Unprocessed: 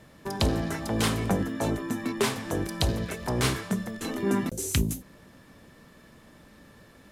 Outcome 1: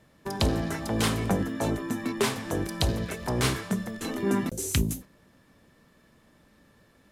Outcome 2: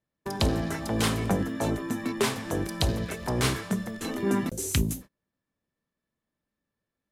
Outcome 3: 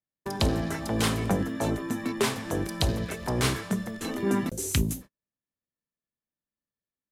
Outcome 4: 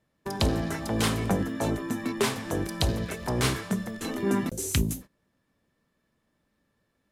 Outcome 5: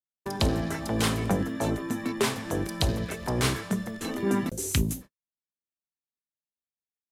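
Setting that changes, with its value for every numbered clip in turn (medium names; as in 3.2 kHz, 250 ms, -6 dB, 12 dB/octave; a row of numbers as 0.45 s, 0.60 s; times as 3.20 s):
gate, range: -7 dB, -33 dB, -46 dB, -21 dB, -59 dB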